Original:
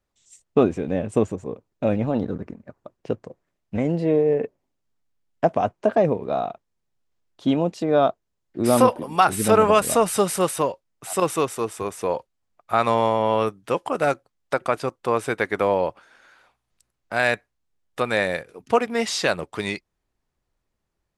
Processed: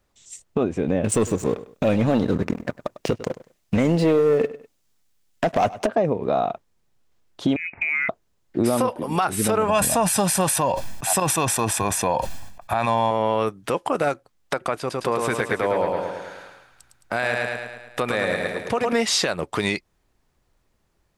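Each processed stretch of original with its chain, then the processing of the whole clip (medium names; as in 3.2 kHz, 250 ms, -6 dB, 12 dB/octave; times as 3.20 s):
1.04–5.87 s: treble shelf 2.5 kHz +11.5 dB + waveshaping leveller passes 2 + feedback delay 100 ms, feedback 18%, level -20.5 dB
7.56–8.09 s: frequency inversion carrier 2.7 kHz + compression 8:1, threshold -30 dBFS
9.68–13.11 s: comb 1.2 ms, depth 63% + decay stretcher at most 63 dB/s
14.79–18.93 s: compression 1.5:1, threshold -39 dBFS + feedback delay 108 ms, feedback 55%, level -4.5 dB
whole clip: compression 6:1, threshold -27 dBFS; loudness maximiser +19 dB; trim -9 dB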